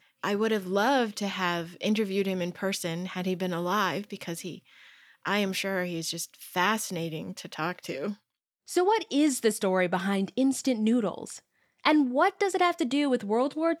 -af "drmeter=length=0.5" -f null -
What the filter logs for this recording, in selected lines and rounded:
Channel 1: DR: 11.6
Overall DR: 11.6